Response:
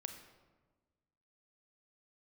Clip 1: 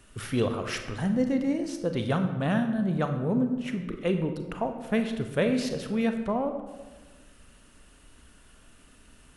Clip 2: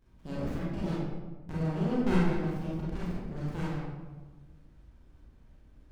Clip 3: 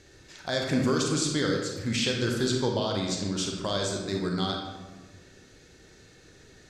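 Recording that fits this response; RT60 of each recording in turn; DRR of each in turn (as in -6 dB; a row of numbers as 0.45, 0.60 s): 1; 1.3, 1.3, 1.3 s; 6.0, -8.0, 0.5 dB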